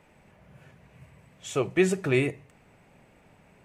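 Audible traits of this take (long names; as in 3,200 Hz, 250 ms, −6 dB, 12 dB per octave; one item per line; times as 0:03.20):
background noise floor −60 dBFS
spectral slope −5.5 dB per octave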